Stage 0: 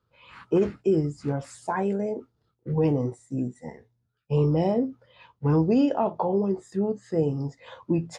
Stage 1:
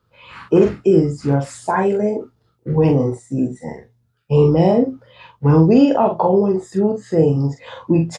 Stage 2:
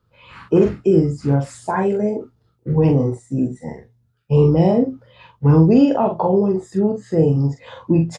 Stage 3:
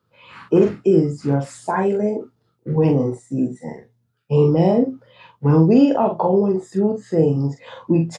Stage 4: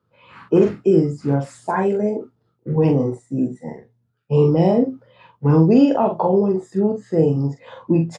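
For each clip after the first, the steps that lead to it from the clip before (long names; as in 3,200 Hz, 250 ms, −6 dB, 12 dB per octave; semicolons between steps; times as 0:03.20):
double-tracking delay 43 ms −5 dB; level +8.5 dB
low-shelf EQ 250 Hz +6 dB; level −3.5 dB
high-pass filter 150 Hz 12 dB per octave
one half of a high-frequency compander decoder only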